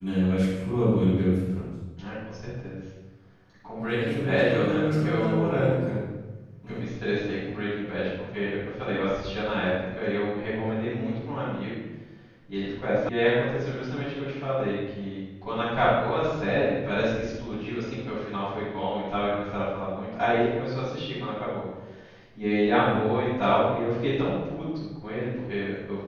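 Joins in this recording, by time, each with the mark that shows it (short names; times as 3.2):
13.09 sound cut off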